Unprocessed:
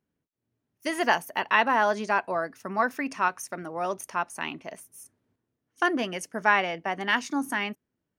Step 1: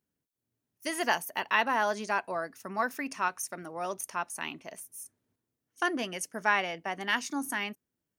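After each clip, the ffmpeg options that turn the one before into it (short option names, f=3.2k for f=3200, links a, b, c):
-af "highshelf=f=4.7k:g=10.5,volume=-5.5dB"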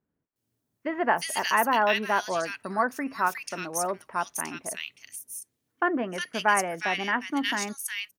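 -filter_complex "[0:a]acrossover=split=2000[a][b];[b]adelay=360[c];[a][c]amix=inputs=2:normalize=0,volume=5.5dB"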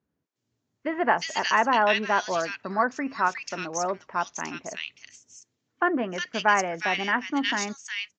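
-af "volume=1.5dB" -ar 16000 -c:a libvorbis -b:a 64k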